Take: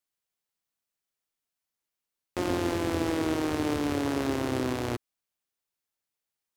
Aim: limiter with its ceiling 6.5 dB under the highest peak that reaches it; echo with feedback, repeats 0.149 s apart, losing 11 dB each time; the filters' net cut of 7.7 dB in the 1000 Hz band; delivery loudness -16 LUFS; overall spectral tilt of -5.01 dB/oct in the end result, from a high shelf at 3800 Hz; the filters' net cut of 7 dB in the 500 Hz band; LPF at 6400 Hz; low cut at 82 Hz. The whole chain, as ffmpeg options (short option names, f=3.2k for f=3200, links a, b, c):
-af "highpass=82,lowpass=6.4k,equalizer=f=500:t=o:g=-8.5,equalizer=f=1k:t=o:g=-7.5,highshelf=f=3.8k:g=3.5,alimiter=limit=-23dB:level=0:latency=1,aecho=1:1:149|298|447:0.282|0.0789|0.0221,volume=20.5dB"